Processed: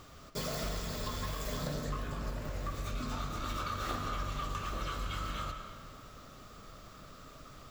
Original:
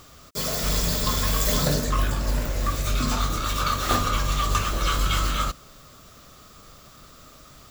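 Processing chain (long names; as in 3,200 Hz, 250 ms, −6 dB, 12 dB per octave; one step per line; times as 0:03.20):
high-shelf EQ 4,400 Hz −9 dB
downward compressor 10 to 1, threshold −30 dBFS, peak gain reduction 13 dB
comb and all-pass reverb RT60 2.3 s, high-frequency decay 0.6×, pre-delay 70 ms, DRR 5.5 dB
level −3 dB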